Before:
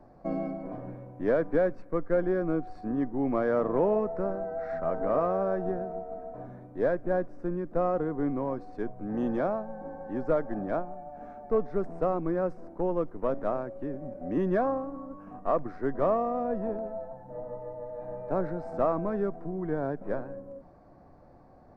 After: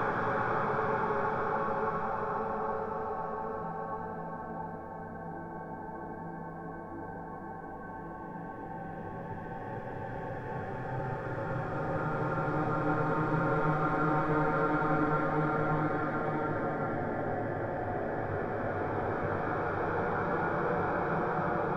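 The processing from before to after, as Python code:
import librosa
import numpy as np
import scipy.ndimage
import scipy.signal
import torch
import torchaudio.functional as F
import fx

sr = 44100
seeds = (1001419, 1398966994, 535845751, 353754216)

y = fx.spec_gate(x, sr, threshold_db=-10, keep='weak')
y = fx.paulstretch(y, sr, seeds[0], factor=16.0, window_s=0.5, from_s=9.45)
y = y * 10.0 ** (7.0 / 20.0)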